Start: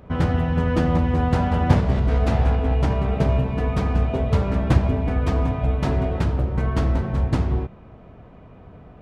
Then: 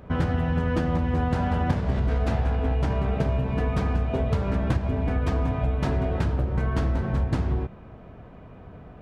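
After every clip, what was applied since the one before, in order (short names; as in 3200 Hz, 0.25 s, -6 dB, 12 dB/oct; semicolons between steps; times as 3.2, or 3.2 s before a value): compressor, threshold -20 dBFS, peak gain reduction 11 dB; bell 1600 Hz +3.5 dB 0.22 oct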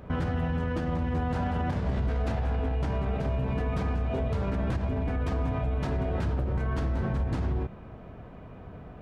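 limiter -21 dBFS, peak gain reduction 10 dB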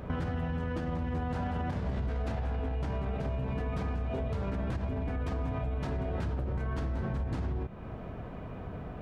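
compressor 2.5:1, threshold -38 dBFS, peak gain reduction 9.5 dB; gain +4 dB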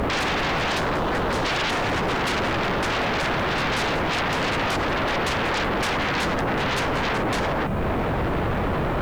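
spectral delete 0.78–1.44, 580–2100 Hz; sine folder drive 19 dB, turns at -22.5 dBFS; requantised 10-bit, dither triangular; gain +2 dB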